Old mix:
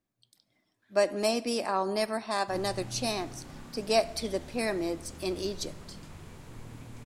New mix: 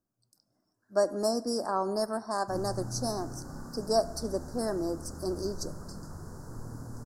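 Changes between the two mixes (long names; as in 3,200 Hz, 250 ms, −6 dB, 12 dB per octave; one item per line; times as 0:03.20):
background +4.0 dB
master: add elliptic band-stop filter 1,500–5,000 Hz, stop band 70 dB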